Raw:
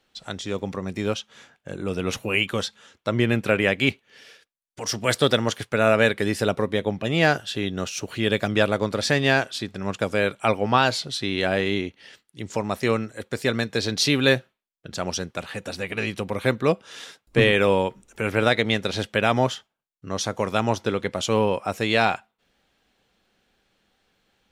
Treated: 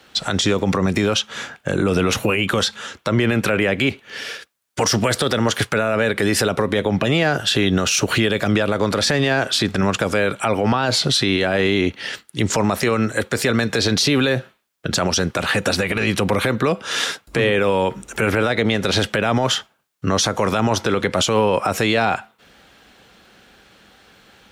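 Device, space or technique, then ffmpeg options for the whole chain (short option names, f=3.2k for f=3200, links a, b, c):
mastering chain: -filter_complex "[0:a]highpass=45,equalizer=f=1.4k:t=o:w=0.66:g=3.5,acrossover=split=340|840[a][b][c];[a]acompressor=threshold=-25dB:ratio=4[d];[b]acompressor=threshold=-22dB:ratio=4[e];[c]acompressor=threshold=-24dB:ratio=4[f];[d][e][f]amix=inputs=3:normalize=0,acompressor=threshold=-27dB:ratio=2,alimiter=level_in=25dB:limit=-1dB:release=50:level=0:latency=1,volume=-7.5dB"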